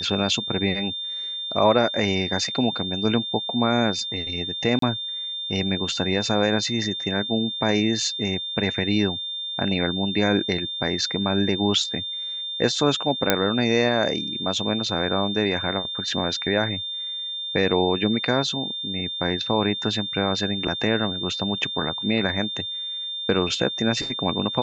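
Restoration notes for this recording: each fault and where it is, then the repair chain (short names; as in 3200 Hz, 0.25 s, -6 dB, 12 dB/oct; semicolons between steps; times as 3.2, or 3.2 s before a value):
tone 3600 Hz -28 dBFS
4.79–4.82 gap 33 ms
13.3 pop -1 dBFS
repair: de-click; notch 3600 Hz, Q 30; interpolate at 4.79, 33 ms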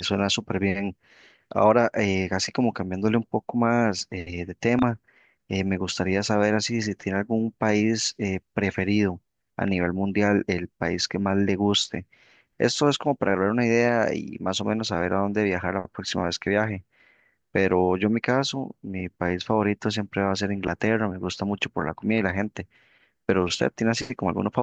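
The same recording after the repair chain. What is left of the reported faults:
none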